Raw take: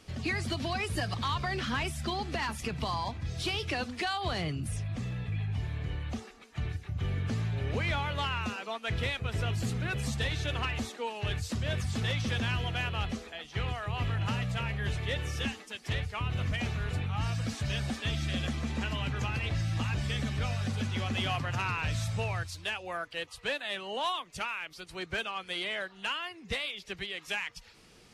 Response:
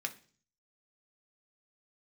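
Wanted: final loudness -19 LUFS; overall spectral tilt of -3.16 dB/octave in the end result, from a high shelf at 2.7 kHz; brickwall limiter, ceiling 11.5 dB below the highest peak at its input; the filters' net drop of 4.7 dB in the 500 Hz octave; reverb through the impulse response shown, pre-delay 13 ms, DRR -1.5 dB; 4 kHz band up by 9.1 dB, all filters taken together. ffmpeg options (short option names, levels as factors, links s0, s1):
-filter_complex "[0:a]equalizer=f=500:t=o:g=-6.5,highshelf=f=2700:g=4,equalizer=f=4000:t=o:g=9,alimiter=level_in=1.33:limit=0.0631:level=0:latency=1,volume=0.75,asplit=2[s0][s1];[1:a]atrim=start_sample=2205,adelay=13[s2];[s1][s2]afir=irnorm=-1:irlink=0,volume=1[s3];[s0][s3]amix=inputs=2:normalize=0,volume=4.22"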